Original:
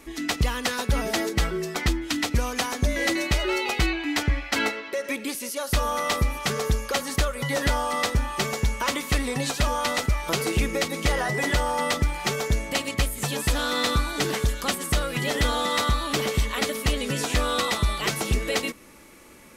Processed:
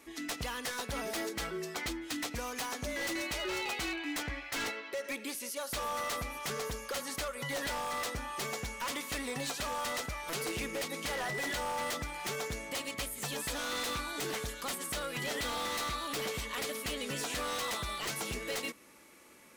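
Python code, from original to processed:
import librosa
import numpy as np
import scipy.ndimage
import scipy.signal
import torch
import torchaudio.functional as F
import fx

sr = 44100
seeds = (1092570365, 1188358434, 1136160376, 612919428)

y = fx.highpass(x, sr, hz=150.0, slope=6)
y = fx.low_shelf(y, sr, hz=420.0, db=-3.5)
y = 10.0 ** (-23.0 / 20.0) * (np.abs((y / 10.0 ** (-23.0 / 20.0) + 3.0) % 4.0 - 2.0) - 1.0)
y = y * librosa.db_to_amplitude(-7.0)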